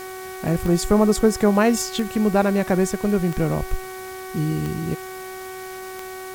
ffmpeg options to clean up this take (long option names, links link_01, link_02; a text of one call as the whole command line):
ffmpeg -i in.wav -af "adeclick=threshold=4,bandreject=frequency=375.2:width_type=h:width=4,bandreject=frequency=750.4:width_type=h:width=4,bandreject=frequency=1125.6:width_type=h:width=4,bandreject=frequency=1500.8:width_type=h:width=4,bandreject=frequency=1876:width_type=h:width=4,bandreject=frequency=2251.2:width_type=h:width=4,afwtdn=0.0079" out.wav